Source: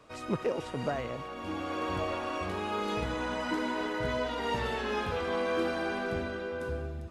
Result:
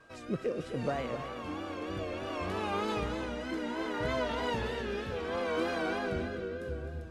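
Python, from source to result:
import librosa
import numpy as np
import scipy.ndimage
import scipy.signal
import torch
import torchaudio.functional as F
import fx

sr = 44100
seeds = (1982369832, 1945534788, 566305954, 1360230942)

p1 = fx.vibrato(x, sr, rate_hz=3.2, depth_cents=80.0)
p2 = fx.rotary(p1, sr, hz=0.65)
p3 = p2 + 10.0 ** (-60.0 / 20.0) * np.sin(2.0 * np.pi * 1600.0 * np.arange(len(p2)) / sr)
y = p3 + fx.echo_single(p3, sr, ms=258, db=-10.0, dry=0)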